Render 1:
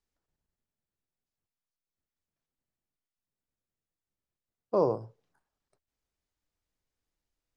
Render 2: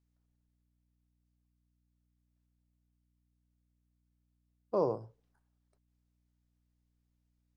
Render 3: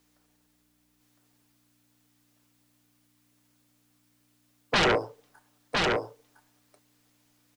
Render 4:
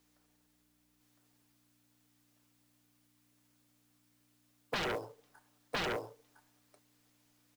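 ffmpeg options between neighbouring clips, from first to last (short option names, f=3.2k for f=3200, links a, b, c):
-af "aeval=exprs='val(0)+0.000282*(sin(2*PI*60*n/s)+sin(2*PI*2*60*n/s)/2+sin(2*PI*3*60*n/s)/3+sin(2*PI*4*60*n/s)/4+sin(2*PI*5*60*n/s)/5)':c=same,volume=-4.5dB"
-filter_complex "[0:a]aecho=1:1:6.7:0.37,acrossover=split=320[a][b];[b]aeval=exprs='0.112*sin(PI/2*7.08*val(0)/0.112)':c=same[c];[a][c]amix=inputs=2:normalize=0,aecho=1:1:1009:0.708"
-af "alimiter=limit=-20.5dB:level=0:latency=1:release=492,acompressor=threshold=-29dB:ratio=10,acrusher=bits=5:mode=log:mix=0:aa=0.000001,volume=-4dB"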